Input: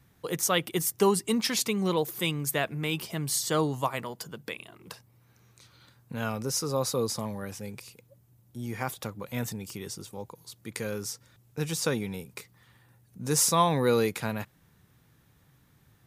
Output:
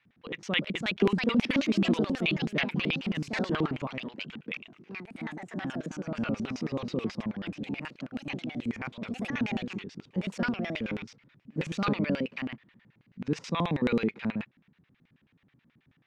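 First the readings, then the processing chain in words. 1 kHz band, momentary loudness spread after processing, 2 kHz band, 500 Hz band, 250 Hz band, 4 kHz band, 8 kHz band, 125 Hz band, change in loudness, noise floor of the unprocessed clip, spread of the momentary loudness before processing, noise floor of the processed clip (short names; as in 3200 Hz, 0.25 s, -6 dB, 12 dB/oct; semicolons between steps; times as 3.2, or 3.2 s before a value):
-6.5 dB, 13 LU, +2.5 dB, -4.5 dB, +3.5 dB, -2.5 dB, -21.5 dB, -1.0 dB, -2.5 dB, -63 dBFS, 19 LU, -72 dBFS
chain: air absorption 180 m; echoes that change speed 0.414 s, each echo +3 st, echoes 3; LFO band-pass square 9.3 Hz 230–2500 Hz; gain +7.5 dB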